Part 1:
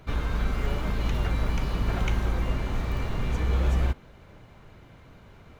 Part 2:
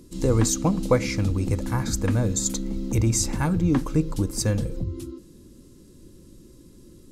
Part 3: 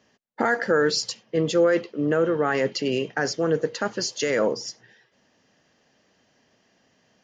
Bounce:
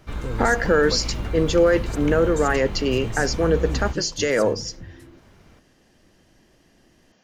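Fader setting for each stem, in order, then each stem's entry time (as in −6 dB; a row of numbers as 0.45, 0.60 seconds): −2.5, −11.5, +2.5 decibels; 0.00, 0.00, 0.00 seconds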